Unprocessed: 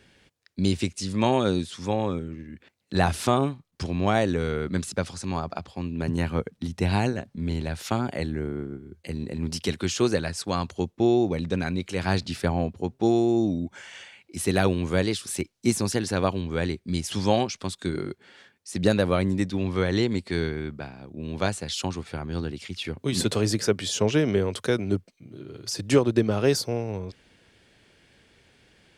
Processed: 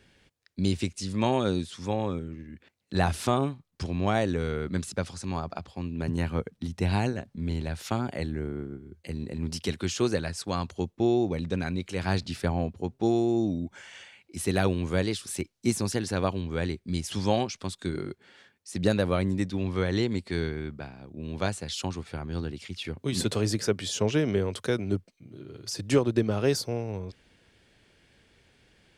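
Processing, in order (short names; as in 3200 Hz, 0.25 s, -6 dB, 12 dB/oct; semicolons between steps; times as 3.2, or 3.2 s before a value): low shelf 67 Hz +6 dB; gain -3.5 dB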